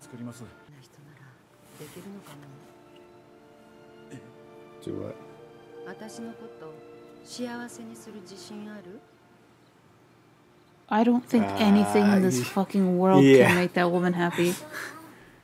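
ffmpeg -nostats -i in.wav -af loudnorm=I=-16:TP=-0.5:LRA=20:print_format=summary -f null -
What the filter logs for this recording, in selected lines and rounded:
Input Integrated:    -22.0 LUFS
Input True Peak:      -4.8 dBTP
Input LRA:            23.1 LU
Input Threshold:     -36.2 LUFS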